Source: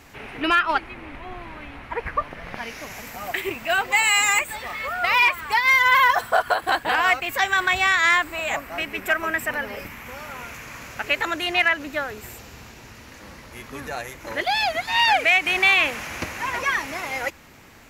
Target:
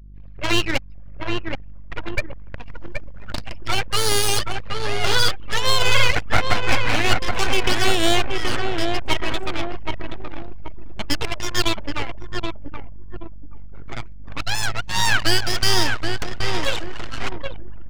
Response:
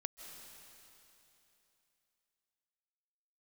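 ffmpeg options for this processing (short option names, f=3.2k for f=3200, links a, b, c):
-filter_complex "[0:a]highpass=100,equalizer=f=150:t=q:w=4:g=5,equalizer=f=390:t=q:w=4:g=-8,equalizer=f=910:t=q:w=4:g=-3,equalizer=f=1.9k:t=q:w=4:g=-6,equalizer=f=3.3k:t=q:w=4:g=-5,lowpass=f=8.1k:w=0.5412,lowpass=f=8.1k:w=1.3066,aeval=exprs='abs(val(0))':c=same,tremolo=f=110:d=0.462,asplit=2[a][b];[b]adelay=775,lowpass=f=2.1k:p=1,volume=-3.5dB,asplit=2[c][d];[d]adelay=775,lowpass=f=2.1k:p=1,volume=0.54,asplit=2[e][f];[f]adelay=775,lowpass=f=2.1k:p=1,volume=0.54,asplit=2[g][h];[h]adelay=775,lowpass=f=2.1k:p=1,volume=0.54,asplit=2[i][j];[j]adelay=775,lowpass=f=2.1k:p=1,volume=0.54,asplit=2[k][l];[l]adelay=775,lowpass=f=2.1k:p=1,volume=0.54,asplit=2[m][n];[n]adelay=775,lowpass=f=2.1k:p=1,volume=0.54[o];[c][e][g][i][k][m][o]amix=inputs=7:normalize=0[p];[a][p]amix=inputs=2:normalize=0,aeval=exprs='val(0)+0.00631*(sin(2*PI*50*n/s)+sin(2*PI*2*50*n/s)/2+sin(2*PI*3*50*n/s)/3+sin(2*PI*4*50*n/s)/4+sin(2*PI*5*50*n/s)/5)':c=same,anlmdn=6.31,volume=6.5dB"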